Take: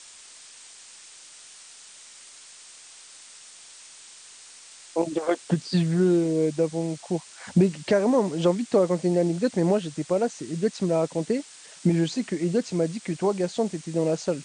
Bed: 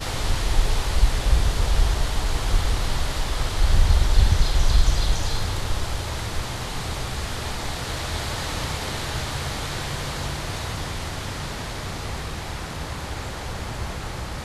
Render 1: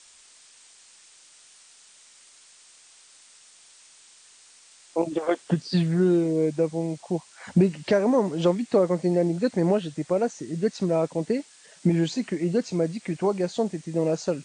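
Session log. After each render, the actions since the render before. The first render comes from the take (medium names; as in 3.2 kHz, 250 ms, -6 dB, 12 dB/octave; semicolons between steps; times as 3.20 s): noise print and reduce 6 dB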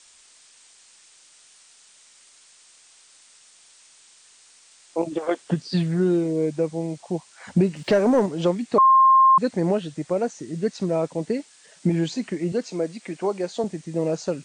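7.76–8.26 s: waveshaping leveller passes 1; 8.78–9.38 s: bleep 1.06 kHz -11 dBFS; 12.52–13.64 s: high-pass 250 Hz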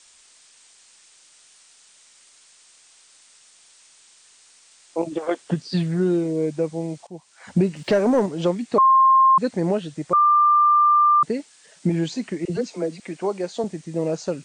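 7.07–7.56 s: fade in linear, from -16 dB; 10.13–11.23 s: bleep 1.19 kHz -12.5 dBFS; 12.45–13.00 s: phase dispersion lows, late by 49 ms, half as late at 510 Hz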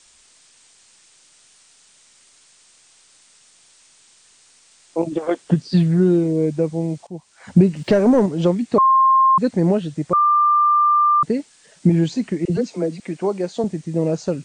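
bass shelf 310 Hz +9.5 dB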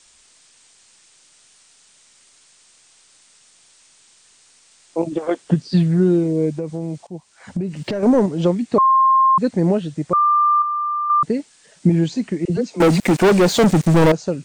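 6.55–8.03 s: compression, threshold -20 dBFS; 10.62–11.10 s: gain -7 dB; 12.80–14.12 s: waveshaping leveller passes 5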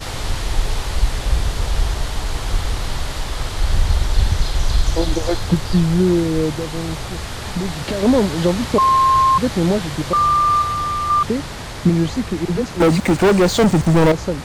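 add bed +1 dB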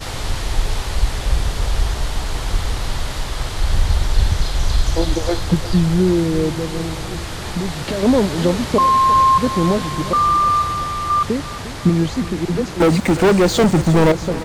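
feedback delay 351 ms, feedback 57%, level -15 dB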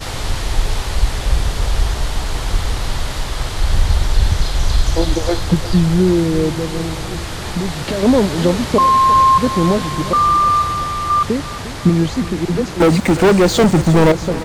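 trim +2 dB; peak limiter -2 dBFS, peak gain reduction 1.5 dB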